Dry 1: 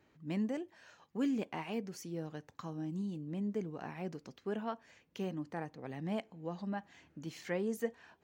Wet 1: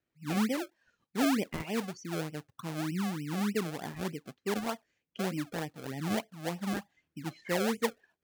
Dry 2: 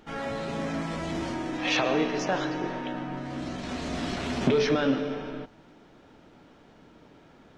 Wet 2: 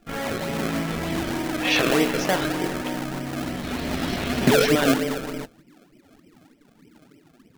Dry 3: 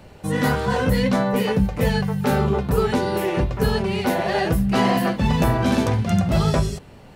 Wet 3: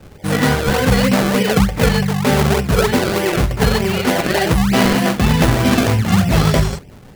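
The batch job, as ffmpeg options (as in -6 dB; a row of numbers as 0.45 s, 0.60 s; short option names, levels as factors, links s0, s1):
-filter_complex "[0:a]lowpass=11000,afftdn=nr=21:nf=-45,acrossover=split=1100[s0][s1];[s0]acrusher=samples=32:mix=1:aa=0.000001:lfo=1:lforange=32:lforate=3.3[s2];[s2][s1]amix=inputs=2:normalize=0,volume=1.88"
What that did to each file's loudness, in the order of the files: +5.5 LU, +5.5 LU, +5.5 LU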